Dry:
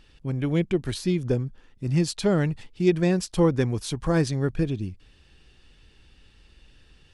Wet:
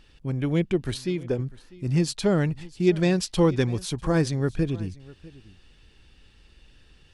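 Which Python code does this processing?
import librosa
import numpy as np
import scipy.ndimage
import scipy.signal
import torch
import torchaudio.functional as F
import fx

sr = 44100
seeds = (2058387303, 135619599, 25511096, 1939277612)

y = fx.bass_treble(x, sr, bass_db=-7, treble_db=-5, at=(0.97, 1.39))
y = y + 10.0 ** (-21.0 / 20.0) * np.pad(y, (int(648 * sr / 1000.0), 0))[:len(y)]
y = fx.dynamic_eq(y, sr, hz=3700.0, q=1.0, threshold_db=-47.0, ratio=4.0, max_db=6, at=(2.91, 3.82), fade=0.02)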